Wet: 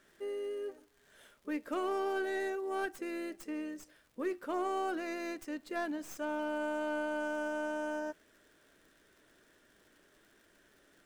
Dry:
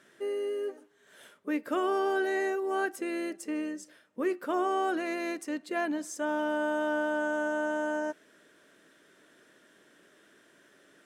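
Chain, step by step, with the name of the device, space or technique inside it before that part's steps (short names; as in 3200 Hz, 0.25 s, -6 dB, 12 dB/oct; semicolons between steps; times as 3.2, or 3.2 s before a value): record under a worn stylus (tracing distortion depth 0.075 ms; crackle 140/s -49 dBFS; pink noise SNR 37 dB); gain -6 dB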